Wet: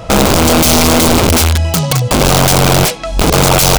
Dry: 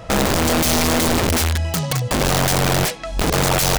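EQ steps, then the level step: peaking EQ 1.8 kHz -7 dB 0.29 oct; +8.5 dB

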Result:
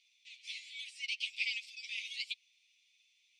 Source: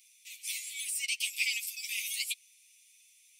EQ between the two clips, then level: four-pole ladder low-pass 4.9 kHz, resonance 35%; +1.0 dB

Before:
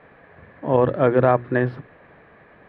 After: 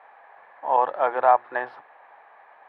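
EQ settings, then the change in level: resonant high-pass 830 Hz, resonance Q 4.9; -5.0 dB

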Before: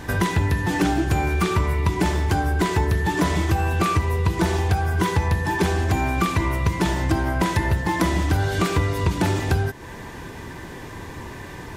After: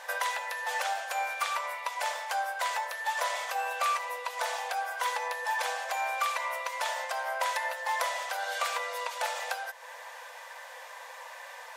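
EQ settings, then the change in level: brick-wall FIR high-pass 480 Hz; -4.5 dB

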